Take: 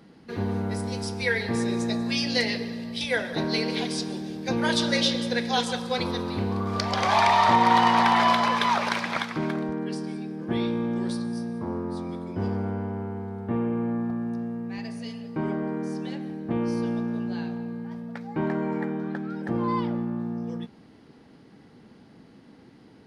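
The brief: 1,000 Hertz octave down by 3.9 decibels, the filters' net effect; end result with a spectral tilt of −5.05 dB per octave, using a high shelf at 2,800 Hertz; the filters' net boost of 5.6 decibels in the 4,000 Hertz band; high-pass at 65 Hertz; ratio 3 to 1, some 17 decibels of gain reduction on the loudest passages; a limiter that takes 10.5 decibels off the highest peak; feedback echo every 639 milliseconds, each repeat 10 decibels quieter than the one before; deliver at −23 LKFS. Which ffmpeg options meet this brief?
ffmpeg -i in.wav -af "highpass=65,equalizer=frequency=1000:width_type=o:gain=-5,highshelf=frequency=2800:gain=3,equalizer=frequency=4000:width_type=o:gain=4.5,acompressor=threshold=-40dB:ratio=3,alimiter=level_in=7dB:limit=-24dB:level=0:latency=1,volume=-7dB,aecho=1:1:639|1278|1917|2556:0.316|0.101|0.0324|0.0104,volume=16.5dB" out.wav

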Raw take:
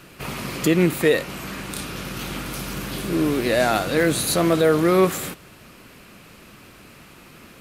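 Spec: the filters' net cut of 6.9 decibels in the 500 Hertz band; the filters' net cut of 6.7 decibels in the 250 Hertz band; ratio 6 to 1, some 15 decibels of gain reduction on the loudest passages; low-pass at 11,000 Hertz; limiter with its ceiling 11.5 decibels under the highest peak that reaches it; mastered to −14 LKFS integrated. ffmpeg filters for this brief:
ffmpeg -i in.wav -af "lowpass=11000,equalizer=frequency=250:width_type=o:gain=-8,equalizer=frequency=500:width_type=o:gain=-6,acompressor=threshold=-35dB:ratio=6,volume=27.5dB,alimiter=limit=-4dB:level=0:latency=1" out.wav

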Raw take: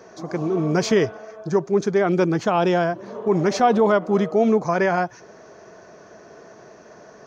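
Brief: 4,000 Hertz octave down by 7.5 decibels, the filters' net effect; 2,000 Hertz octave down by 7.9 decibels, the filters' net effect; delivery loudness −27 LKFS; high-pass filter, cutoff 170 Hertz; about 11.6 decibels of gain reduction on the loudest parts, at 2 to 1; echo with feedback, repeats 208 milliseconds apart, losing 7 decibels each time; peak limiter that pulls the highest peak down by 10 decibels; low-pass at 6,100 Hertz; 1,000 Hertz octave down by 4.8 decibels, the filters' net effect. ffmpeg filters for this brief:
ffmpeg -i in.wav -af "highpass=170,lowpass=6100,equalizer=frequency=1000:width_type=o:gain=-6,equalizer=frequency=2000:width_type=o:gain=-7,equalizer=frequency=4000:width_type=o:gain=-6.5,acompressor=threshold=-37dB:ratio=2,alimiter=level_in=6.5dB:limit=-24dB:level=0:latency=1,volume=-6.5dB,aecho=1:1:208|416|624|832|1040:0.447|0.201|0.0905|0.0407|0.0183,volume=12dB" out.wav

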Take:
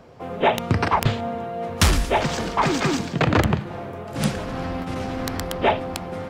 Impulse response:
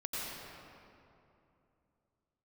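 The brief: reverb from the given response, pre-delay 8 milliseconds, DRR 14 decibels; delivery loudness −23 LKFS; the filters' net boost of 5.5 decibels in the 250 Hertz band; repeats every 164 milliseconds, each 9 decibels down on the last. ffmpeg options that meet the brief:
-filter_complex "[0:a]equalizer=frequency=250:width_type=o:gain=7,aecho=1:1:164|328|492|656:0.355|0.124|0.0435|0.0152,asplit=2[link_01][link_02];[1:a]atrim=start_sample=2205,adelay=8[link_03];[link_02][link_03]afir=irnorm=-1:irlink=0,volume=-17.5dB[link_04];[link_01][link_04]amix=inputs=2:normalize=0,volume=-2.5dB"

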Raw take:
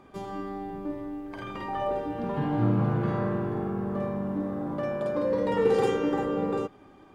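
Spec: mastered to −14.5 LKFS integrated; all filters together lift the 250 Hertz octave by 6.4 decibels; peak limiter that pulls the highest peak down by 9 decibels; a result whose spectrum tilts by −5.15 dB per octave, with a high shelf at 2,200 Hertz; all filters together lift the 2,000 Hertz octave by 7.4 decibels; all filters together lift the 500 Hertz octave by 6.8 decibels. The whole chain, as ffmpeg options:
ffmpeg -i in.wav -af "equalizer=frequency=250:width_type=o:gain=6.5,equalizer=frequency=500:width_type=o:gain=5.5,equalizer=frequency=2000:width_type=o:gain=5.5,highshelf=frequency=2200:gain=6.5,volume=10.5dB,alimiter=limit=-4dB:level=0:latency=1" out.wav

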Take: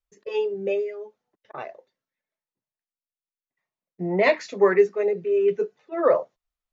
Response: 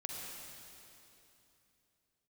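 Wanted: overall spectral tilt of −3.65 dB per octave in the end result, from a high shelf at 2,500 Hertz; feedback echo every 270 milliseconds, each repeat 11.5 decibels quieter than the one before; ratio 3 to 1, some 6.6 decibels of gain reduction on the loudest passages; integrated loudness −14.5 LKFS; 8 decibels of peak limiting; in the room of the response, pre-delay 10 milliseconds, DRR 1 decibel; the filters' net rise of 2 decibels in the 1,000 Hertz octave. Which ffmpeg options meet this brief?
-filter_complex "[0:a]equalizer=frequency=1000:width_type=o:gain=4,highshelf=frequency=2500:gain=-8,acompressor=threshold=-21dB:ratio=3,alimiter=limit=-20dB:level=0:latency=1,aecho=1:1:270|540|810:0.266|0.0718|0.0194,asplit=2[link_01][link_02];[1:a]atrim=start_sample=2205,adelay=10[link_03];[link_02][link_03]afir=irnorm=-1:irlink=0,volume=-1dB[link_04];[link_01][link_04]amix=inputs=2:normalize=0,volume=11.5dB"

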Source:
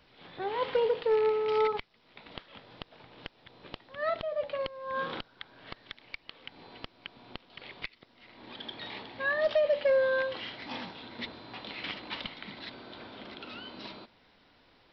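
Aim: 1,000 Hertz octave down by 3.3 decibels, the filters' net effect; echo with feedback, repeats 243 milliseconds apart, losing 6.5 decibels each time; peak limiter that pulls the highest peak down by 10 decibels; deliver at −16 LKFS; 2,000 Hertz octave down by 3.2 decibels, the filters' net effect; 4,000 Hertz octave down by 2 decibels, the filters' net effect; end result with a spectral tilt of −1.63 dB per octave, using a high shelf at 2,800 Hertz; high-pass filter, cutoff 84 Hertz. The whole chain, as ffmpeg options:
ffmpeg -i in.wav -af "highpass=84,equalizer=frequency=1000:width_type=o:gain=-3.5,equalizer=frequency=2000:width_type=o:gain=-3.5,highshelf=frequency=2800:gain=4,equalizer=frequency=4000:width_type=o:gain=-4,alimiter=level_in=6.5dB:limit=-24dB:level=0:latency=1,volume=-6.5dB,aecho=1:1:243|486|729|972|1215|1458:0.473|0.222|0.105|0.0491|0.0231|0.0109,volume=23dB" out.wav

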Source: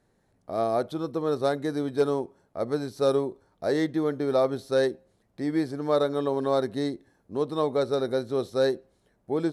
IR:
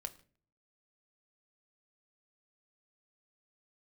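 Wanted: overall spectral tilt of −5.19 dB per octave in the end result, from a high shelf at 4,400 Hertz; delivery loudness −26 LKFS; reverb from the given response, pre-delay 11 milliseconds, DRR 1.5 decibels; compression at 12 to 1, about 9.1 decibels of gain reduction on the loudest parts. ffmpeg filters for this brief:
-filter_complex "[0:a]highshelf=frequency=4400:gain=3.5,acompressor=threshold=-27dB:ratio=12,asplit=2[link_01][link_02];[1:a]atrim=start_sample=2205,adelay=11[link_03];[link_02][link_03]afir=irnorm=-1:irlink=0,volume=1.5dB[link_04];[link_01][link_04]amix=inputs=2:normalize=0,volume=5dB"

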